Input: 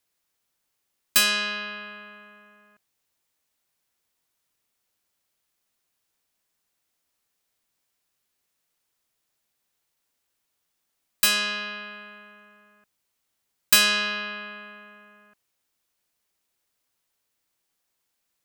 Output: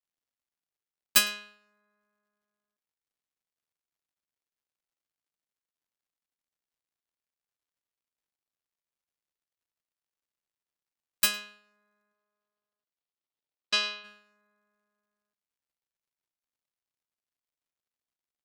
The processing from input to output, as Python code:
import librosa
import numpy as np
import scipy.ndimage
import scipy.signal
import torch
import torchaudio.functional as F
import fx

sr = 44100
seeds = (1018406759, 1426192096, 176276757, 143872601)

y = fx.wiener(x, sr, points=15)
y = fx.dmg_crackle(y, sr, seeds[0], per_s=240.0, level_db=-46.0)
y = fx.cabinet(y, sr, low_hz=100.0, low_slope=12, high_hz=5200.0, hz=(200.0, 1600.0, 2200.0), db=(-8, -5, -3), at=(12.12, 14.03), fade=0.02)
y = y + 10.0 ** (-18.0 / 20.0) * np.pad(y, (int(108 * sr / 1000.0), 0))[:len(y)]
y = fx.upward_expand(y, sr, threshold_db=-36.0, expansion=2.5)